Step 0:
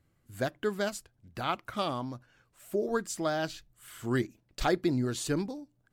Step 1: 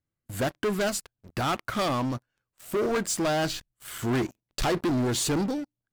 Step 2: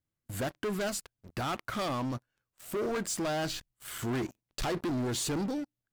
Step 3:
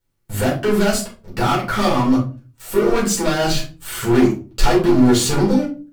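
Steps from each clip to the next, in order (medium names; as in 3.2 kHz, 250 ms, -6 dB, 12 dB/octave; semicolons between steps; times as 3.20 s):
waveshaping leveller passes 5; trim -7 dB
peak limiter -26.5 dBFS, peak gain reduction 5 dB; trim -2 dB
reverberation RT60 0.35 s, pre-delay 4 ms, DRR -6.5 dB; trim +5.5 dB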